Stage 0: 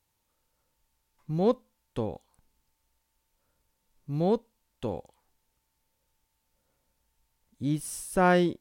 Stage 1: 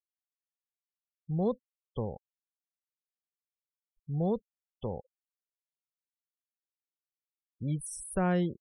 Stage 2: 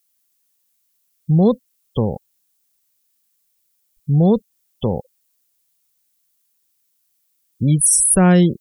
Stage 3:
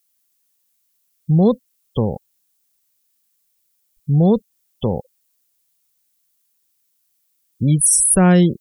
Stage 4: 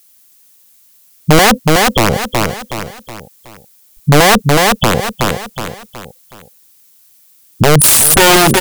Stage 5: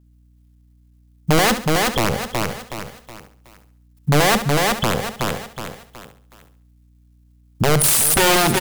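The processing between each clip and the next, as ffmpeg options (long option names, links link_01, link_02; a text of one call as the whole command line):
ffmpeg -i in.wav -filter_complex "[0:a]afftfilt=real='re*gte(hypot(re,im),0.0141)':imag='im*gte(hypot(re,im),0.0141)':win_size=1024:overlap=0.75,equalizer=frequency=290:width=3:gain=-10.5,acrossover=split=360[link_01][link_02];[link_02]acompressor=threshold=-39dB:ratio=2[link_03];[link_01][link_03]amix=inputs=2:normalize=0" out.wav
ffmpeg -i in.wav -filter_complex "[0:a]equalizer=frequency=190:width_type=o:width=2.6:gain=8.5,asplit=2[link_01][link_02];[link_02]alimiter=limit=-21dB:level=0:latency=1:release=237,volume=0dB[link_03];[link_01][link_03]amix=inputs=2:normalize=0,crystalizer=i=5.5:c=0,volume=5dB" out.wav
ffmpeg -i in.wav -af anull out.wav
ffmpeg -i in.wav -af "aeval=exprs='(mod(3.16*val(0)+1,2)-1)/3.16':channel_layout=same,aecho=1:1:370|740|1110|1480:0.224|0.0918|0.0376|0.0154,alimiter=level_in=19.5dB:limit=-1dB:release=50:level=0:latency=1,volume=-1dB" out.wav
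ffmpeg -i in.wav -filter_complex "[0:a]aeval=exprs='sgn(val(0))*max(abs(val(0))-0.00944,0)':channel_layout=same,aeval=exprs='val(0)+0.00631*(sin(2*PI*60*n/s)+sin(2*PI*2*60*n/s)/2+sin(2*PI*3*60*n/s)/3+sin(2*PI*4*60*n/s)/4+sin(2*PI*5*60*n/s)/5)':channel_layout=same,asplit=2[link_01][link_02];[link_02]aecho=0:1:69|138|207|276:0.282|0.104|0.0386|0.0143[link_03];[link_01][link_03]amix=inputs=2:normalize=0,volume=-8dB" out.wav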